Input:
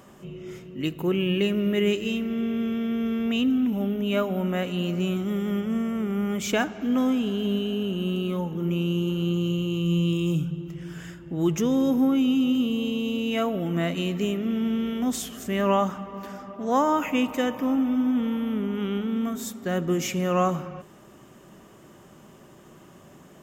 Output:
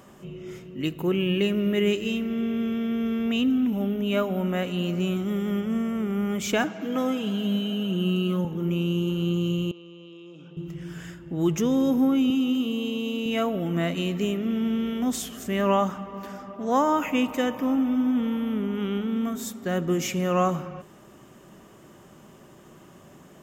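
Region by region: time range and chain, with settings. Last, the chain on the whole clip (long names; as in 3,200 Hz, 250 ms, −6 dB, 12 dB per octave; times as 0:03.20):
0:06.64–0:08.45: high-pass filter 110 Hz 24 dB per octave + comb filter 6.2 ms, depth 59%
0:09.71–0:10.57: Chebyshev band-pass filter 430–6,400 Hz + downward compressor 16 to 1, threshold −40 dBFS + high-frequency loss of the air 160 metres
0:12.30–0:13.26: high-pass filter 200 Hz + mains-hum notches 60/120/180/240/300/360/420/480/540 Hz
whole clip: no processing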